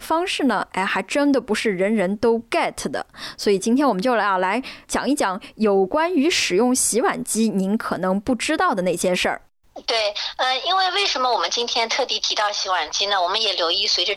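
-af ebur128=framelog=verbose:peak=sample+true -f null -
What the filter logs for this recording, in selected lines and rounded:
Integrated loudness:
  I:         -20.2 LUFS
  Threshold: -30.3 LUFS
Loudness range:
  LRA:         2.0 LU
  Threshold: -40.4 LUFS
  LRA low:   -21.5 LUFS
  LRA high:  -19.5 LUFS
Sample peak:
  Peak:       -8.9 dBFS
True peak:
  Peak:       -8.9 dBFS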